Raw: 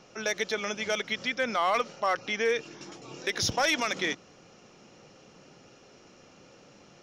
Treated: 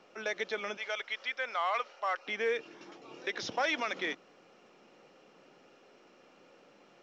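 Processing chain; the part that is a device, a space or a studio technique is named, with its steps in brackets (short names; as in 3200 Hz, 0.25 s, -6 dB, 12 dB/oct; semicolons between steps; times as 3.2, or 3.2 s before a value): 0.77–2.27 HPF 670 Hz 12 dB/oct; telephone (BPF 270–3400 Hz; gain -4 dB; µ-law 128 kbps 16000 Hz)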